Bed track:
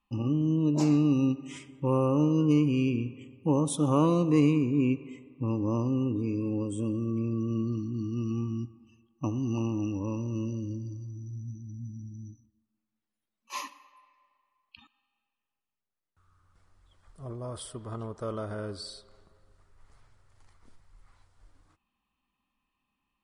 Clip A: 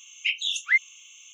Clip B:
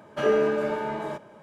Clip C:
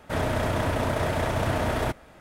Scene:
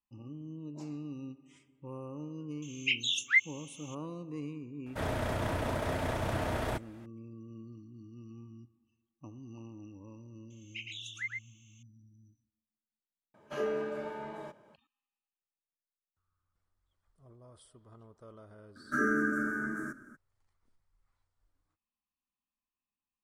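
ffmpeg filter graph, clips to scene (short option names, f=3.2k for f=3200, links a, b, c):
-filter_complex "[1:a]asplit=2[a][b];[2:a]asplit=2[c][d];[0:a]volume=-18dB[e];[b]aecho=1:1:112:0.668[f];[d]firequalizer=gain_entry='entry(120,0);entry(180,-7);entry(250,12);entry(460,-14);entry(890,-27);entry(1400,15);entry(2600,-28);entry(4000,-25);entry(5700,2);entry(9400,7)':delay=0.05:min_phase=1[g];[a]atrim=end=1.33,asetpts=PTS-STARTPTS,volume=-4dB,afade=t=in:d=0.004:c=hsin,afade=t=out:st=1.326:d=0.004:c=hsin,adelay=2620[h];[3:a]atrim=end=2.2,asetpts=PTS-STARTPTS,volume=-7.5dB,afade=t=in:d=0.004:c=hsin,afade=t=out:st=2.196:d=0.004:c=hsin,adelay=4860[i];[f]atrim=end=1.33,asetpts=PTS-STARTPTS,volume=-17.5dB,afade=t=in:d=0.004:c=hsin,afade=t=out:st=1.326:d=0.004:c=hsin,adelay=463050S[j];[c]atrim=end=1.42,asetpts=PTS-STARTPTS,volume=-11.5dB,afade=t=in:d=0.004:c=hsin,afade=t=out:st=1.416:d=0.004:c=hsin,adelay=13340[k];[g]atrim=end=1.42,asetpts=PTS-STARTPTS,volume=-4dB,afade=t=in:d=0.02,afade=t=out:st=1.4:d=0.02,adelay=18750[l];[e][h][i][j][k][l]amix=inputs=6:normalize=0"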